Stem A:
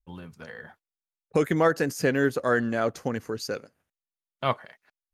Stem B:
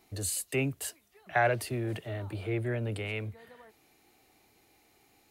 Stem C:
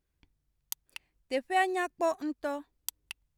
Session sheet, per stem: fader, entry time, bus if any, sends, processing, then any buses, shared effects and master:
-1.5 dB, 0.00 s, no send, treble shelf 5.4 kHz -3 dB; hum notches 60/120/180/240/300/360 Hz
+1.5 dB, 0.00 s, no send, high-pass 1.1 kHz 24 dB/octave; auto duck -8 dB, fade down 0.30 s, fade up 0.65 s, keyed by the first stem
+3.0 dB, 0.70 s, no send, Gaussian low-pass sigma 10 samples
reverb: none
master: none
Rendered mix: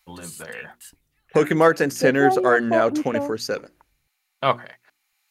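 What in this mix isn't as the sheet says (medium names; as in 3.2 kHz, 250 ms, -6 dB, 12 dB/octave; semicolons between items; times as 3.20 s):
stem A -1.5 dB -> +6.5 dB; stem C +3.0 dB -> +12.0 dB; master: extra bass shelf 130 Hz -9.5 dB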